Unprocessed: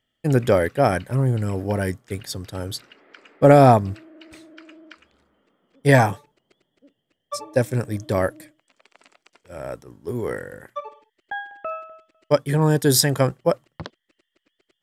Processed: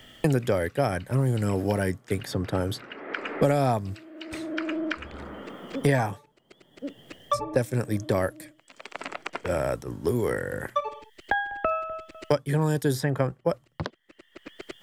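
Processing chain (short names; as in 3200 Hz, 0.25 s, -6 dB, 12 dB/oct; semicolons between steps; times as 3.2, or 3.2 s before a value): three-band squash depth 100%; gain -4 dB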